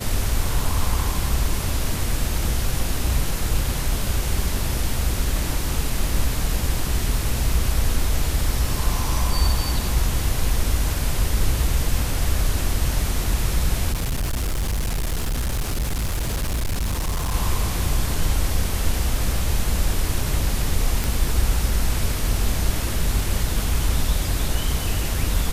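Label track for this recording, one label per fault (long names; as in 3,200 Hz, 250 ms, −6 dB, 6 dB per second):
13.920000	17.350000	clipping −20 dBFS
21.040000	21.040000	click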